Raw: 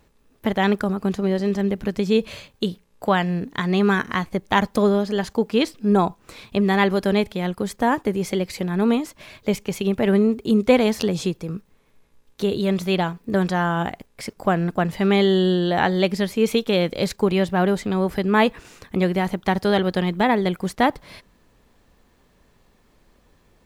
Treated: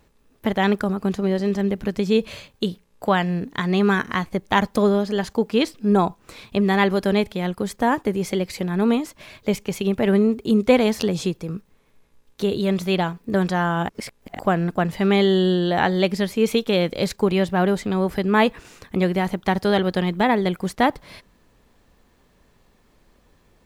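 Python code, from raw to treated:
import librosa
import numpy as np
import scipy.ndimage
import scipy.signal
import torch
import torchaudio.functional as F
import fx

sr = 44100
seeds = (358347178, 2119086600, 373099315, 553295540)

y = fx.edit(x, sr, fx.reverse_span(start_s=13.89, length_s=0.5), tone=tone)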